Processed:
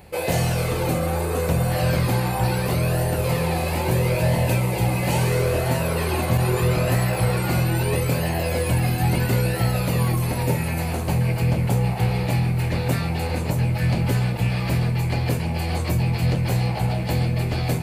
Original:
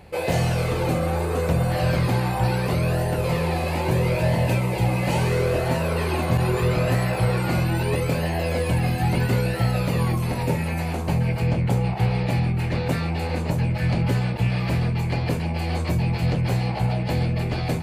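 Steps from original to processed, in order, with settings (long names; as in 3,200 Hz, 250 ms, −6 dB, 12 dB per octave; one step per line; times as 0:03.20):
high-shelf EQ 8,400 Hz +11.5 dB
on a send: feedback delay with all-pass diffusion 1,274 ms, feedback 65%, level −15 dB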